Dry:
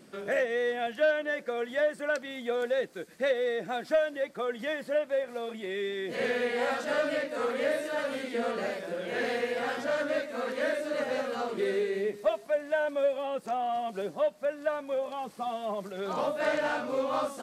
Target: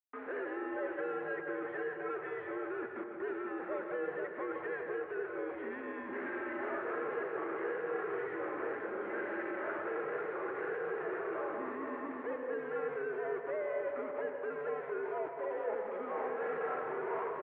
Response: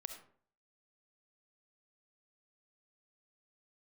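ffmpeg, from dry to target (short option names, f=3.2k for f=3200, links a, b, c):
-filter_complex "[0:a]acrusher=bits=6:mix=0:aa=0.000001,asplit=3[a][b][c];[a]afade=t=out:st=15.32:d=0.02[d];[b]afreqshift=-39,afade=t=in:st=15.32:d=0.02,afade=t=out:st=15.98:d=0.02[e];[c]afade=t=in:st=15.98:d=0.02[f];[d][e][f]amix=inputs=3:normalize=0,volume=35dB,asoftclip=hard,volume=-35dB,asplit=2[g][h];[h]adelay=481,lowpass=f=930:p=1,volume=-4dB,asplit=2[i][j];[j]adelay=481,lowpass=f=930:p=1,volume=0.51,asplit=2[k][l];[l]adelay=481,lowpass=f=930:p=1,volume=0.51,asplit=2[m][n];[n]adelay=481,lowpass=f=930:p=1,volume=0.51,asplit=2[o][p];[p]adelay=481,lowpass=f=930:p=1,volume=0.51,asplit=2[q][r];[r]adelay=481,lowpass=f=930:p=1,volume=0.51,asplit=2[s][t];[t]adelay=481,lowpass=f=930:p=1,volume=0.51[u];[g][i][k][m][o][q][s][u]amix=inputs=8:normalize=0[v];[1:a]atrim=start_sample=2205,asetrate=22050,aresample=44100[w];[v][w]afir=irnorm=-1:irlink=0,highpass=f=520:t=q:w=0.5412,highpass=f=520:t=q:w=1.307,lowpass=f=2.1k:t=q:w=0.5176,lowpass=f=2.1k:t=q:w=0.7071,lowpass=f=2.1k:t=q:w=1.932,afreqshift=-140"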